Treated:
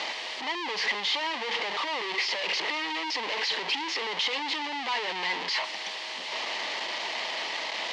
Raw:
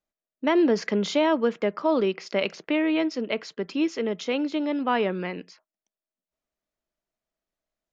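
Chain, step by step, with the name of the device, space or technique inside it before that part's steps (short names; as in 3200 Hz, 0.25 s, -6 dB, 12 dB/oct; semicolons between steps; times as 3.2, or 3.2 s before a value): home computer beeper (infinite clipping; speaker cabinet 610–4900 Hz, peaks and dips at 630 Hz -6 dB, 900 Hz +7 dB, 1400 Hz -10 dB, 2000 Hz +7 dB, 3000 Hz +6 dB, 4400 Hz +4 dB); gain -1.5 dB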